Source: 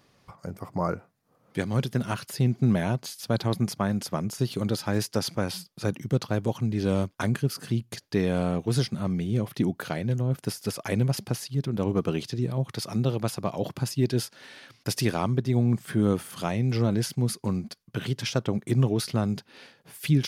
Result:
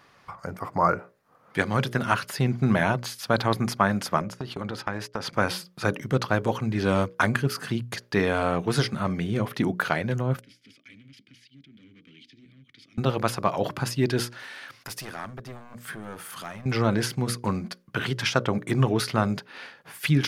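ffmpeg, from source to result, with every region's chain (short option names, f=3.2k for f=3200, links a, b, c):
-filter_complex "[0:a]asettb=1/sr,asplit=3[a][b][c];[a]atrim=end=4.214[d];[b]atrim=start=4.21:end=5.33,asetpts=PTS-STARTPTS,afade=t=in:d=0.004:c=qsin,afade=t=out:st=1.116:d=0.004:c=qsin,lowpass=f=3.4k:p=1,agate=range=-16dB:threshold=-41dB:ratio=16:release=100:detection=peak,acompressor=threshold=-29dB:ratio=5:attack=3.2:release=140:knee=1:detection=peak[e];[c]atrim=start=5.326[f];[d][e]acrossfade=d=0.004:c1=hsin:c2=qsin[g];[g][f]acrossfade=d=0.004:c1=qsin:c2=hsin,asettb=1/sr,asplit=3[h][i][j];[h]atrim=end=10.414[k];[i]atrim=start=10.41:end=12.98,asetpts=PTS-STARTPTS,afade=t=in:d=0.004:c=qsin,afade=t=out:st=2.566:d=0.004:c=qsin,volume=24.5dB,asoftclip=hard,volume=-24.5dB,acrossover=split=130|3000[l][m][n];[m]acompressor=threshold=-56dB:ratio=2:attack=3.2:release=140:knee=2.83:detection=peak[o];[l][o][n]amix=inputs=3:normalize=0,asplit=3[p][q][r];[p]bandpass=f=270:t=q:w=8,volume=0dB[s];[q]bandpass=f=2.29k:t=q:w=8,volume=-6dB[t];[r]bandpass=f=3.01k:t=q:w=8,volume=-9dB[u];[s][t][u]amix=inputs=3:normalize=0[v];[j]atrim=start=12.976[w];[k][v]acrossfade=d=0.004:c1=hsin:c2=qsin[x];[x][w]acrossfade=d=0.004:c1=qsin:c2=hsin,asettb=1/sr,asplit=3[y][z][aa];[y]atrim=end=14.394[ab];[z]atrim=start=14.39:end=16.66,asetpts=PTS-STARTPTS,afade=t=in:d=0.004:c=qsin,afade=t=out:st=2.266:d=0.004:c=qsin,aeval=exprs='clip(val(0),-1,0.0562)':c=same,acompressor=threshold=-48dB:ratio=2:attack=3.2:release=140:knee=1:detection=peak,highshelf=f=7.8k:g=9.5[ac];[aa]atrim=start=16.656[ad];[ab][ac]acrossfade=d=0.004:c1=hsin:c2=qsin[ae];[ae][ad]acrossfade=d=0.004:c1=qsin:c2=hsin,equalizer=f=1.4k:t=o:w=2.2:g=11.5,bandreject=f=60:t=h:w=6,bandreject=f=120:t=h:w=6,bandreject=f=180:t=h:w=6,bandreject=f=240:t=h:w=6,bandreject=f=300:t=h:w=6,bandreject=f=360:t=h:w=6,bandreject=f=420:t=h:w=6,bandreject=f=480:t=h:w=6,bandreject=f=540:t=h:w=6,bandreject=f=600:t=h:w=6"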